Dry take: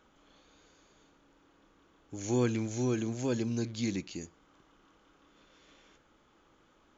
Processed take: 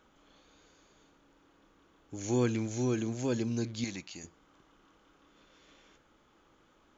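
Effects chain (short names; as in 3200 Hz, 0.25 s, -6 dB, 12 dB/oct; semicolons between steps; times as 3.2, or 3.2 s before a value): 3.84–4.24 resonant low shelf 540 Hz -7 dB, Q 1.5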